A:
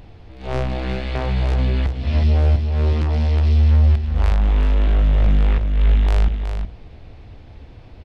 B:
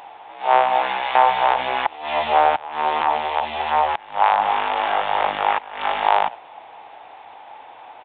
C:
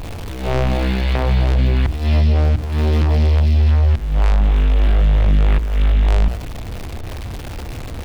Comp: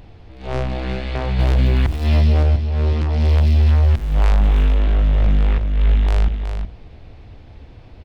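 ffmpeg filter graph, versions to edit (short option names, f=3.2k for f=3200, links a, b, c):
-filter_complex "[2:a]asplit=2[a][b];[0:a]asplit=3[c][d][e];[c]atrim=end=1.392[f];[a]atrim=start=1.388:end=2.432[g];[d]atrim=start=2.428:end=3.31[h];[b]atrim=start=3.15:end=4.82[i];[e]atrim=start=4.66[j];[f][g]acrossfade=d=0.004:c1=hsin:c2=hsin[k];[k][h]acrossfade=d=0.004:c1=hsin:c2=hsin[l];[l][i]acrossfade=d=0.16:c1=tri:c2=tri[m];[m][j]acrossfade=d=0.16:c1=tri:c2=tri"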